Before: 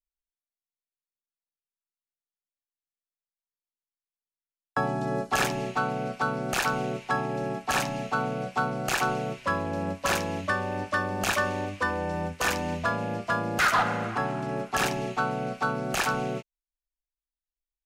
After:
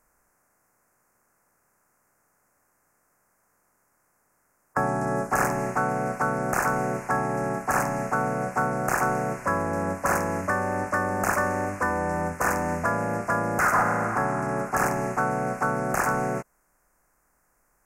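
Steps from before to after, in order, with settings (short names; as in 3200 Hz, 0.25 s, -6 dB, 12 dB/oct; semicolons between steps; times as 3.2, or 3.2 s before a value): per-bin compression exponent 0.6; Butterworth band-stop 3500 Hz, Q 0.72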